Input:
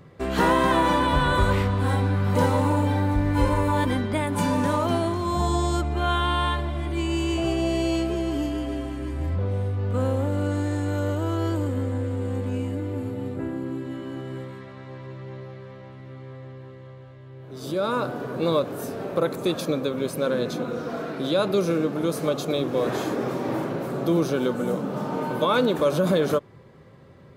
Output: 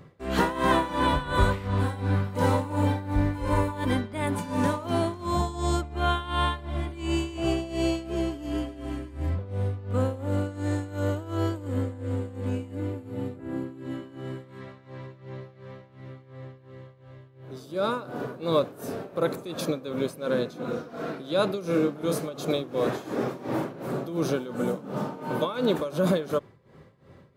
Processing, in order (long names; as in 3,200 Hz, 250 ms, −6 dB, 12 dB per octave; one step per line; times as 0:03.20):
amplitude tremolo 2.8 Hz, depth 82%
0:21.66–0:22.18: double-tracking delay 28 ms −5 dB